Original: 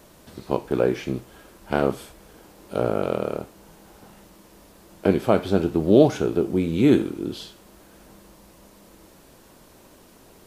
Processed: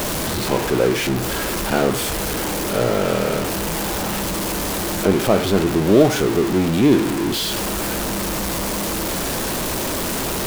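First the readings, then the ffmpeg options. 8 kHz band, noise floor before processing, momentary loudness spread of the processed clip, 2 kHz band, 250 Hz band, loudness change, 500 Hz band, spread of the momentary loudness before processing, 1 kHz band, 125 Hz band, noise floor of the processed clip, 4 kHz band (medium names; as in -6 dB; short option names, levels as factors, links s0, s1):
no reading, -52 dBFS, 7 LU, +12.5 dB, +4.5 dB, +3.0 dB, +4.0 dB, 15 LU, +8.5 dB, +6.0 dB, -23 dBFS, +16.0 dB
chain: -af "aeval=exprs='val(0)+0.5*0.133*sgn(val(0))':c=same"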